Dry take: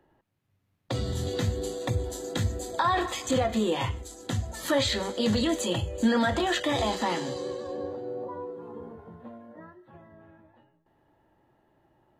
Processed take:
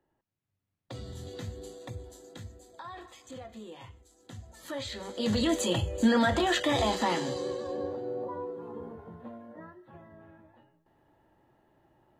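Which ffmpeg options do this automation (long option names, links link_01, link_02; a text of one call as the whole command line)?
ffmpeg -i in.wav -af "volume=7.5dB,afade=type=out:start_time=1.69:duration=0.95:silence=0.421697,afade=type=in:start_time=4.07:duration=0.92:silence=0.398107,afade=type=in:start_time=4.99:duration=0.54:silence=0.281838" out.wav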